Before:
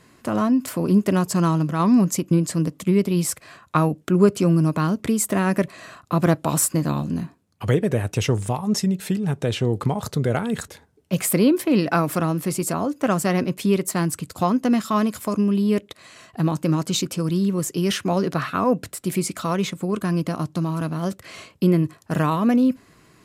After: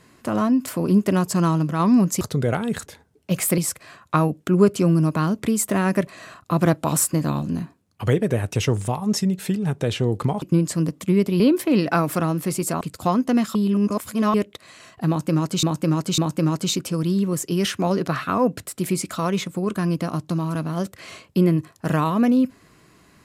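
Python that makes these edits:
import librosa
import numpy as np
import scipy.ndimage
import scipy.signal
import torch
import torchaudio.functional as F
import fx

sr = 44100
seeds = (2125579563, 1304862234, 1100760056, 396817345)

y = fx.edit(x, sr, fx.swap(start_s=2.21, length_s=0.98, other_s=10.03, other_length_s=1.37),
    fx.cut(start_s=12.81, length_s=1.36),
    fx.reverse_span(start_s=14.91, length_s=0.79),
    fx.repeat(start_s=16.44, length_s=0.55, count=3), tone=tone)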